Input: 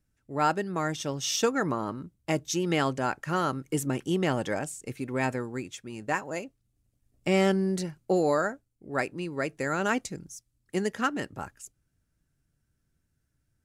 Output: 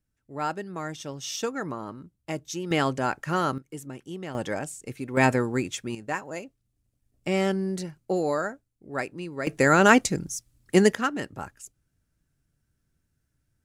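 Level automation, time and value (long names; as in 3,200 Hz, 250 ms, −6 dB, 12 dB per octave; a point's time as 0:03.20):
−4.5 dB
from 0:02.71 +2 dB
from 0:03.58 −10 dB
from 0:04.35 0 dB
from 0:05.17 +8 dB
from 0:05.95 −1.5 dB
from 0:09.47 +10.5 dB
from 0:10.95 +1 dB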